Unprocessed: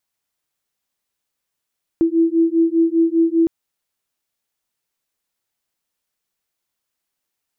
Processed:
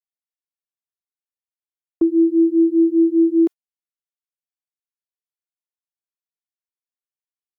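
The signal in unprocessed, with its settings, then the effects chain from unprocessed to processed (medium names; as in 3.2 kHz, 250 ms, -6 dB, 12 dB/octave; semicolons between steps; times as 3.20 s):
beating tones 328 Hz, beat 5 Hz, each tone -16 dBFS 1.46 s
high-pass 330 Hz; gate -26 dBFS, range -26 dB; comb 2.8 ms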